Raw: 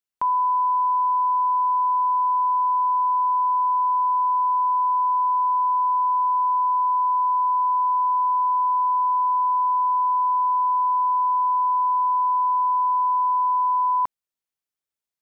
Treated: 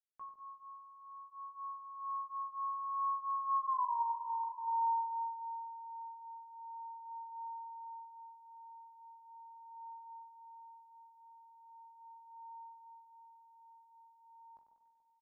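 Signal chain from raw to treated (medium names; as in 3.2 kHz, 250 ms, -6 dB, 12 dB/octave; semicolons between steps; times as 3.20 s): Doppler pass-by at 3.81 s, 31 m/s, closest 4 m; doubling 44 ms -9.5 dB; echo whose repeats swap between lows and highs 144 ms, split 1 kHz, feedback 53%, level -10 dB; compression 2:1, threshold -39 dBFS, peak gain reduction 11 dB; chorus 0.52 Hz, delay 16 ms, depth 2.5 ms; feedback delay 96 ms, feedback 55%, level -8.5 dB; phaser 0.2 Hz, delay 1.1 ms, feedback 45%; trim +3 dB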